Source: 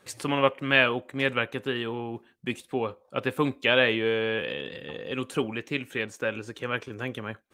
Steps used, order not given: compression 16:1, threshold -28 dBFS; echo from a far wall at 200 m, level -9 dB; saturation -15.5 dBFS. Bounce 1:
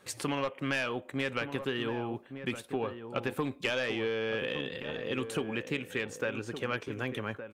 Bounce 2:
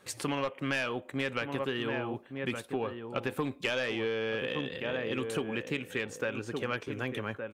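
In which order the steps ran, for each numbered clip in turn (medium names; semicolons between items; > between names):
saturation > compression > echo from a far wall; echo from a far wall > saturation > compression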